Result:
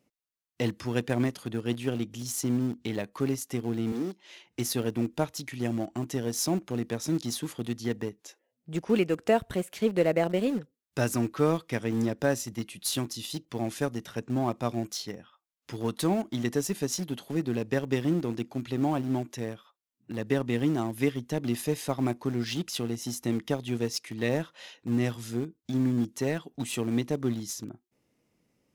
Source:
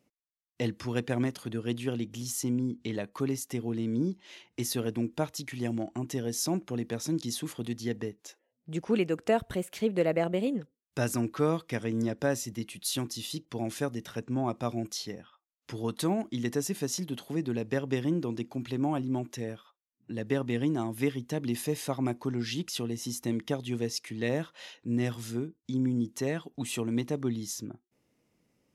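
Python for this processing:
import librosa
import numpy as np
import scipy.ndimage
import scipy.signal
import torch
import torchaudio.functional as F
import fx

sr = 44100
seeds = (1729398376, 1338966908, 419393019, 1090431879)

p1 = np.where(np.abs(x) >= 10.0 ** (-30.0 / 20.0), x, 0.0)
p2 = x + (p1 * 10.0 ** (-10.0 / 20.0))
y = fx.highpass(p2, sr, hz=310.0, slope=12, at=(3.92, 4.47))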